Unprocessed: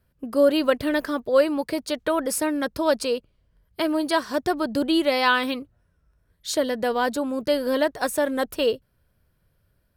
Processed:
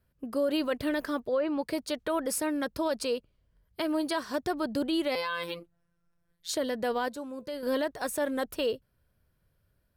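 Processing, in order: 1.21–1.64 s: low-pass that closes with the level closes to 2 kHz, closed at -12.5 dBFS; peak limiter -15.5 dBFS, peak gain reduction 8.5 dB; 5.15–6.49 s: robot voice 171 Hz; 7.08–7.63 s: feedback comb 510 Hz, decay 0.45 s, mix 60%; trim -5 dB

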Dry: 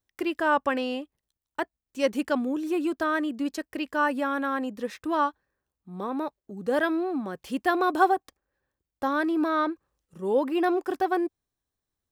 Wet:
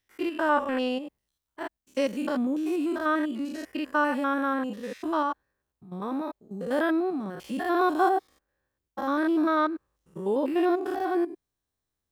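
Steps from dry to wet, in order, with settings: spectrogram pixelated in time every 100 ms; 0.52–1.61 s: transient shaper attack -7 dB, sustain +2 dB; trim +2 dB

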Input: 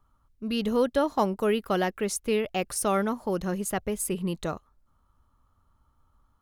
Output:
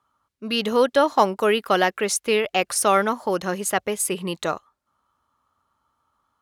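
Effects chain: frequency weighting A; spectral noise reduction 6 dB; bass shelf 82 Hz +10.5 dB; trim +9 dB

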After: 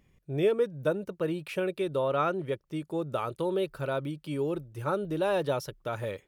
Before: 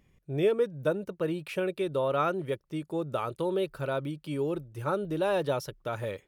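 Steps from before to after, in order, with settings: 2.02–2.66 s: treble shelf 11 kHz -> 7.7 kHz -8.5 dB

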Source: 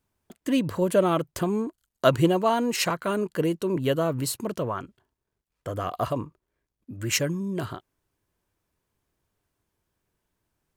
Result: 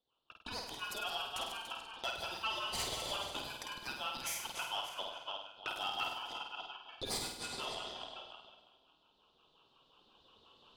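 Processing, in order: backward echo that repeats 144 ms, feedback 54%, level -8 dB; recorder AGC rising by 5.9 dB/s; high-pass 540 Hz 6 dB/octave; level-controlled noise filter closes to 1.7 kHz, open at -25 dBFS; compression 3:1, threshold -38 dBFS, peak gain reduction 16.5 dB; LFO high-pass sine 5.6 Hz 750–2100 Hz; saturation -29.5 dBFS, distortion -14 dB; ring modulator 2 kHz; on a send: flutter echo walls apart 8.6 m, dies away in 0.63 s; on the sum: endings held to a fixed fall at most 330 dB/s; trim +1.5 dB

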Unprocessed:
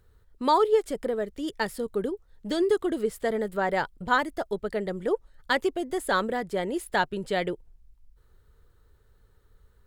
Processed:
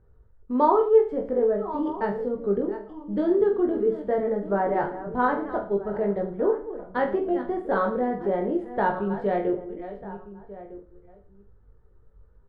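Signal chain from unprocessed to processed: chunks repeated in reverse 474 ms, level -13 dB; low-pass 1 kHz 12 dB/octave; echo from a far wall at 170 m, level -16 dB; tempo 0.79×; on a send: reverse bouncing-ball echo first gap 20 ms, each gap 1.25×, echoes 5; on the sum: trim +1.5 dB

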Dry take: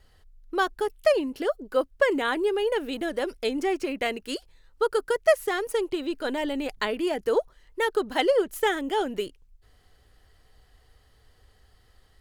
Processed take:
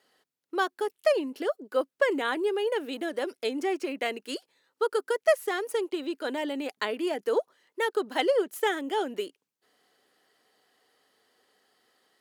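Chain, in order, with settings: high-pass 230 Hz 24 dB/octave; trim -2.5 dB

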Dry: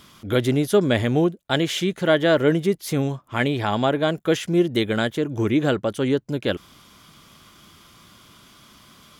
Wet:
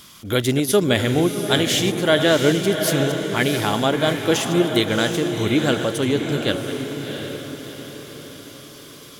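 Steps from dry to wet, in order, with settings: chunks repeated in reverse 120 ms, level -12 dB; treble shelf 3.3 kHz +10.5 dB; on a send: echo that smears into a reverb 709 ms, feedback 47%, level -6.5 dB

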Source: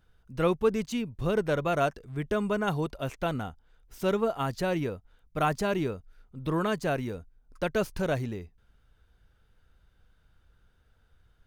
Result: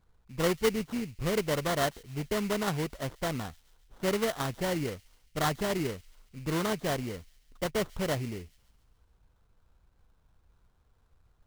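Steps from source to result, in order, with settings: treble shelf 4.2 kHz -10.5 dB; sample-rate reducer 2.5 kHz, jitter 20%; feedback echo behind a high-pass 140 ms, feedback 56%, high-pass 3.1 kHz, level -20 dB; trim -2 dB

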